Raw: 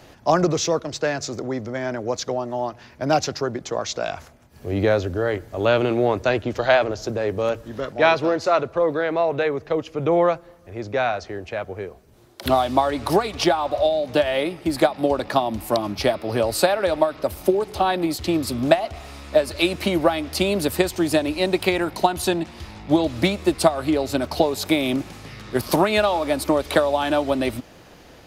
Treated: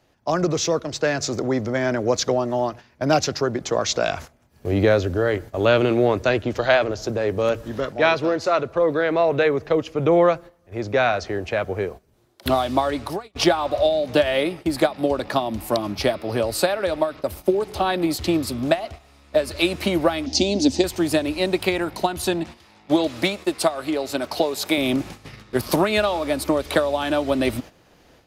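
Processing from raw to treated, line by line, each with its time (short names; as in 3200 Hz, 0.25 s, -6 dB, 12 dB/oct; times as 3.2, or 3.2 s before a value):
12.95–13.35 fade out quadratic, to -21.5 dB
20.26–20.84 EQ curve 120 Hz 0 dB, 160 Hz -10 dB, 260 Hz +13 dB, 430 Hz -4 dB, 820 Hz +1 dB, 1200 Hz -17 dB, 2900 Hz -2 dB, 6200 Hz +12 dB, 12000 Hz -27 dB
22.57–24.78 HPF 370 Hz 6 dB/oct
whole clip: AGC gain up to 10.5 dB; dynamic EQ 830 Hz, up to -4 dB, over -25 dBFS, Q 2.3; gate -31 dBFS, range -12 dB; gain -3.5 dB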